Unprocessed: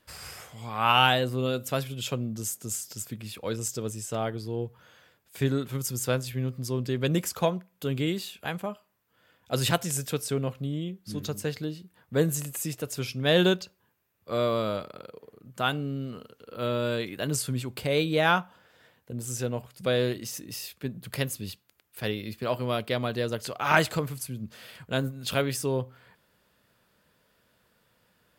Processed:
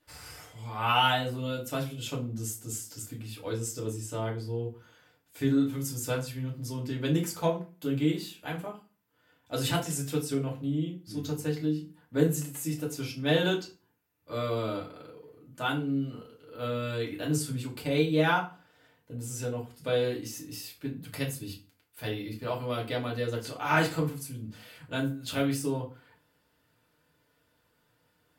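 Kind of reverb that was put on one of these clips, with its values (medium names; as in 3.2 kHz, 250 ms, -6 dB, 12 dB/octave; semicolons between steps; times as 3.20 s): FDN reverb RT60 0.34 s, low-frequency decay 1.3×, high-frequency decay 0.8×, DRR -3.5 dB; trim -8.5 dB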